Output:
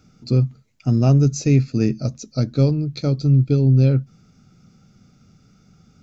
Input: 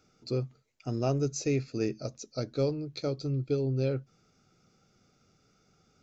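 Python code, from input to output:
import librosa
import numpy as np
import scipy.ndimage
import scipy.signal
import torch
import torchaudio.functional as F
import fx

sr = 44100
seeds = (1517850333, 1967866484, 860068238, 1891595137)

y = fx.low_shelf_res(x, sr, hz=290.0, db=8.5, q=1.5)
y = y * librosa.db_to_amplitude(7.0)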